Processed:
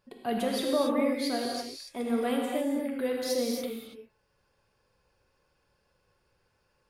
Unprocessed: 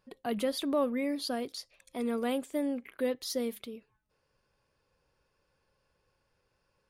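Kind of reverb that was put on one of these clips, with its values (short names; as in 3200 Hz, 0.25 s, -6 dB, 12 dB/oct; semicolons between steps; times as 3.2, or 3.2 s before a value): non-linear reverb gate 0.31 s flat, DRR -1.5 dB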